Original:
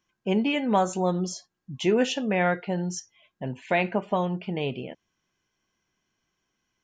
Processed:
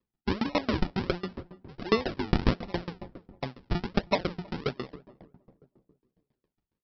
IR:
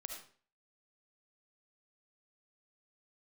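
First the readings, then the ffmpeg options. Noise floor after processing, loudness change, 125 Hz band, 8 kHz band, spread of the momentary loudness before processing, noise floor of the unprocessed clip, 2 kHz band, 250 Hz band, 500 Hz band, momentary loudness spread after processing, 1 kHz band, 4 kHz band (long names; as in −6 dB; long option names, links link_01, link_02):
below −85 dBFS, −5.0 dB, −1.5 dB, below −15 dB, 14 LU, −81 dBFS, −5.5 dB, −4.5 dB, −5.5 dB, 15 LU, −6.5 dB, −2.5 dB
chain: -filter_complex "[0:a]bandreject=frequency=60:width_type=h:width=6,bandreject=frequency=120:width_type=h:width=6,bandreject=frequency=180:width_type=h:width=6,adynamicequalizer=threshold=0.0126:dfrequency=1500:dqfactor=0.74:tfrequency=1500:tqfactor=0.74:attack=5:release=100:ratio=0.375:range=3.5:mode=boostabove:tftype=bell,aresample=11025,acrusher=samples=14:mix=1:aa=0.000001:lfo=1:lforange=14:lforate=1.4,aresample=44100,asplit=2[link_01][link_02];[link_02]adelay=318,lowpass=frequency=1000:poles=1,volume=-15dB,asplit=2[link_03][link_04];[link_04]adelay=318,lowpass=frequency=1000:poles=1,volume=0.49,asplit=2[link_05][link_06];[link_06]adelay=318,lowpass=frequency=1000:poles=1,volume=0.49,asplit=2[link_07][link_08];[link_08]adelay=318,lowpass=frequency=1000:poles=1,volume=0.49,asplit=2[link_09][link_10];[link_10]adelay=318,lowpass=frequency=1000:poles=1,volume=0.49[link_11];[link_01][link_03][link_05][link_07][link_09][link_11]amix=inputs=6:normalize=0,aeval=exprs='val(0)*pow(10,-28*if(lt(mod(7.3*n/s,1),2*abs(7.3)/1000),1-mod(7.3*n/s,1)/(2*abs(7.3)/1000),(mod(7.3*n/s,1)-2*abs(7.3)/1000)/(1-2*abs(7.3)/1000))/20)':channel_layout=same,volume=3dB"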